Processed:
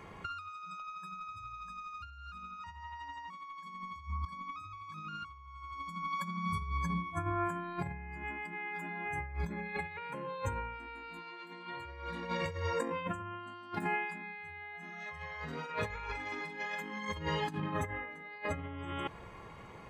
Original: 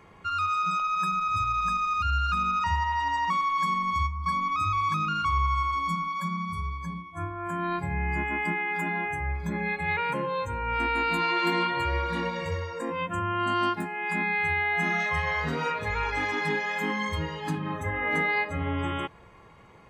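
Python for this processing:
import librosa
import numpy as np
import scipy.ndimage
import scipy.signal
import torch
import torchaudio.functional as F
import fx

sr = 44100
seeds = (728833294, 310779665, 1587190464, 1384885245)

y = fx.over_compress(x, sr, threshold_db=-34.0, ratio=-0.5)
y = fx.doubler(y, sr, ms=42.0, db=-6.5, at=(15.93, 16.65))
y = y * librosa.db_to_amplitude(-4.5)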